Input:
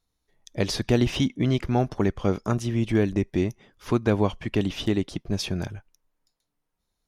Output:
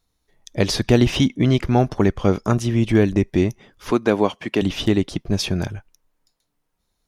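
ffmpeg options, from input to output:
-filter_complex "[0:a]asettb=1/sr,asplit=3[a][b][c];[a]atrim=end=3.914[d];[b]atrim=start=3.91:end=4.62,asetpts=PTS-STARTPTS,afade=t=in:d=0.004:c=qsin,afade=t=out:st=0.706:d=0.004:c=qsin,highpass=230[e];[c]atrim=start=4.616[f];[d][e]acrossfade=d=0.004:c1=hsin:c2=qsin[g];[g][f]acrossfade=d=0.004:c1=qsin:c2=hsin,volume=6dB"

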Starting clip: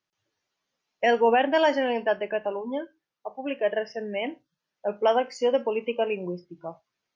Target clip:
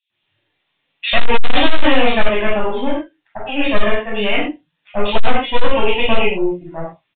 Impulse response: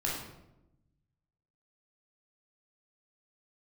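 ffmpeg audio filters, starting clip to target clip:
-filter_complex "[0:a]aeval=exprs='0.299*(cos(1*acos(clip(val(0)/0.299,-1,1)))-cos(1*PI/2))+0.00668*(cos(2*acos(clip(val(0)/0.299,-1,1)))-cos(2*PI/2))+0.106*(cos(4*acos(clip(val(0)/0.299,-1,1)))-cos(4*PI/2))+0.0188*(cos(5*acos(clip(val(0)/0.299,-1,1)))-cos(5*PI/2))':c=same,aexciter=amount=3.8:drive=5.1:freq=2.1k,acrossover=split=3000[a][b];[a]adelay=100[c];[c][b]amix=inputs=2:normalize=0[d];[1:a]atrim=start_sample=2205,afade=t=out:st=0.18:d=0.01,atrim=end_sample=8379[e];[d][e]afir=irnorm=-1:irlink=0,aresample=8000,asoftclip=type=hard:threshold=-4.5dB,aresample=44100,volume=1.5dB"

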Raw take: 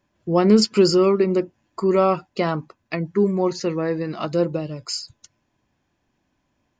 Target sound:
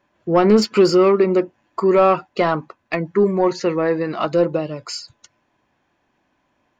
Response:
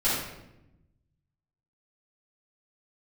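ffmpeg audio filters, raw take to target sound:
-filter_complex "[0:a]bandreject=f=5k:w=19,asplit=2[a][b];[b]highpass=f=720:p=1,volume=14dB,asoftclip=type=tanh:threshold=-4.5dB[c];[a][c]amix=inputs=2:normalize=0,lowpass=f=1.7k:p=1,volume=-6dB,volume=1.5dB"

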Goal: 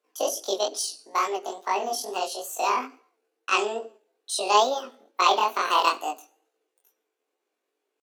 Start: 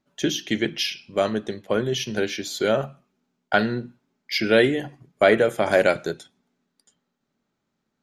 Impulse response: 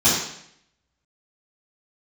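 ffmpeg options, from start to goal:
-filter_complex "[0:a]highpass=f=170:w=0.5412,highpass=f=170:w=1.3066,asplit=2[a][b];[1:a]atrim=start_sample=2205,afade=t=out:st=0.44:d=0.01,atrim=end_sample=19845[c];[b][c]afir=irnorm=-1:irlink=0,volume=-41dB[d];[a][d]amix=inputs=2:normalize=0,asetrate=80880,aresample=44100,atempo=0.545254,flanger=delay=17:depth=7.1:speed=2.3"

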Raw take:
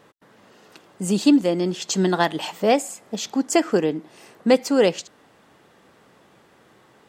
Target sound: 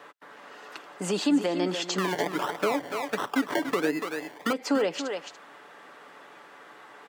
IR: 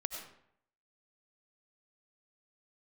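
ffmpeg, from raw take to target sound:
-filter_complex "[0:a]acrossover=split=6600[a][b];[b]acompressor=threshold=-41dB:ratio=4:attack=1:release=60[c];[a][c]amix=inputs=2:normalize=0,asettb=1/sr,asplit=3[d][e][f];[d]atrim=end=1.984[g];[e]atrim=start=1.98:end=4.53,asetpts=PTS-STARTPTS,afade=t=in:d=0.004:c=qsin,afade=t=out:st=2.546:d=0.004:c=qsin,acrusher=samples=27:mix=1:aa=0.000001:lfo=1:lforange=16.2:lforate=1.4[h];[f]atrim=start=4.526[i];[g][h]acrossfade=d=0.004:c1=hsin:c2=qsin[j];[j][i]acrossfade=d=0.004:c1=qsin:c2=hsin,alimiter=limit=-16dB:level=0:latency=1:release=159,highpass=260,equalizer=f=1.4k:t=o:w=2.5:g=10.5,aecho=1:1:6.9:0.33,aecho=1:1:288:0.299,acrossover=split=420[k][l];[l]acompressor=threshold=-27dB:ratio=5[m];[k][m]amix=inputs=2:normalize=0,volume=-1.5dB"

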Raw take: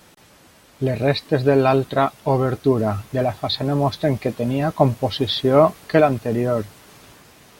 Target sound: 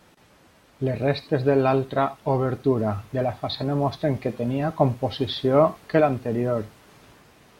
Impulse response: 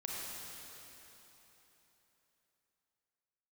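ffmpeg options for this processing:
-filter_complex "[0:a]highshelf=f=4.8k:g=-11.5,asplit=2[a][b];[1:a]atrim=start_sample=2205,atrim=end_sample=3969,highshelf=f=4.5k:g=11.5[c];[b][c]afir=irnorm=-1:irlink=0,volume=-9dB[d];[a][d]amix=inputs=2:normalize=0,volume=-5.5dB"

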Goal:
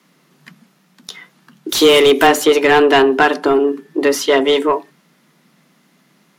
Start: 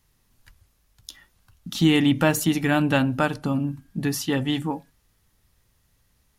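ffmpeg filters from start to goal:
-filter_complex "[0:a]asettb=1/sr,asplit=3[a][b][c];[a]atrim=end=1.694[d];[b]atrim=start=1.69:end=2.27,asetpts=PTS-STARTPTS,afade=t=in:d=0.004:c=qsin,afade=t=out:st=0.576:d=0.004:c=qsin,aemphasis=mode=production:type=75fm[e];[c]atrim=start=2.266[f];[d][e]acrossfade=d=0.004:c1=hsin:c2=qsin[g];[g][f]acrossfade=d=0.004:c1=qsin:c2=hsin,afreqshift=140,asplit=2[h][i];[i]highpass=f=720:p=1,volume=18dB,asoftclip=type=tanh:threshold=-5.5dB[j];[h][j]amix=inputs=2:normalize=0,lowpass=f=2.1k:p=1,volume=-6dB,volume=5.5dB"

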